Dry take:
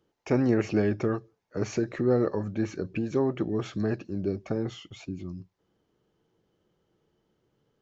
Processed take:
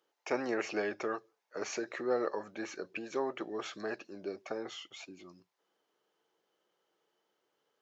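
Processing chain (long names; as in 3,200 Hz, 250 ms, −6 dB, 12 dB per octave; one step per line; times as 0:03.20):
high-pass filter 620 Hz 12 dB per octave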